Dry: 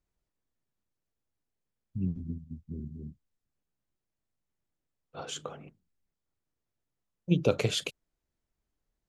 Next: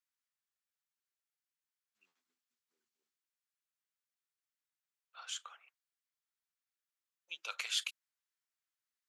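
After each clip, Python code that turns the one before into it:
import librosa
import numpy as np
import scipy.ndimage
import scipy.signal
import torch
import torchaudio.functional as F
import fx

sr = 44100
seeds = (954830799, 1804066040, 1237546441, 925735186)

y = scipy.signal.sosfilt(scipy.signal.butter(4, 1200.0, 'highpass', fs=sr, output='sos'), x)
y = y * librosa.db_to_amplitude(-2.5)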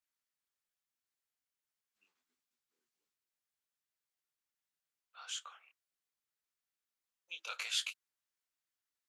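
y = fx.detune_double(x, sr, cents=58)
y = y * librosa.db_to_amplitude(3.5)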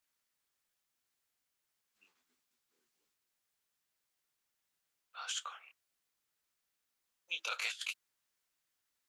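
y = fx.over_compress(x, sr, threshold_db=-42.0, ratio=-0.5)
y = y * librosa.db_to_amplitude(4.0)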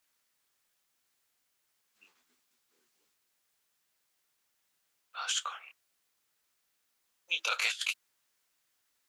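y = fx.low_shelf(x, sr, hz=170.0, db=-4.5)
y = y * librosa.db_to_amplitude(7.0)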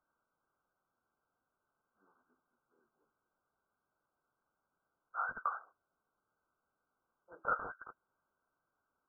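y = np.clip(10.0 ** (26.0 / 20.0) * x, -1.0, 1.0) / 10.0 ** (26.0 / 20.0)
y = fx.brickwall_lowpass(y, sr, high_hz=1600.0)
y = y * librosa.db_to_amplitude(3.0)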